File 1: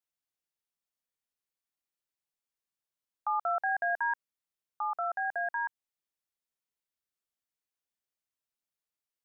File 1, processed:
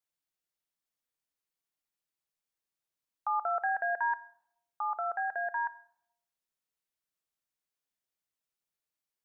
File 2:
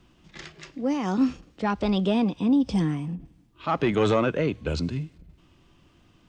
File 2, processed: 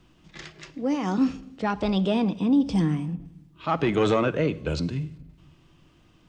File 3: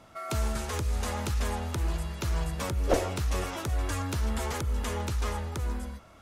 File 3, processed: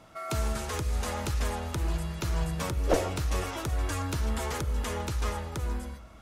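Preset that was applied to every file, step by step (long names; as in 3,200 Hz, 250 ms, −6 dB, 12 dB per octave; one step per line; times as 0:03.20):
rectangular room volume 2,200 cubic metres, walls furnished, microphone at 0.56 metres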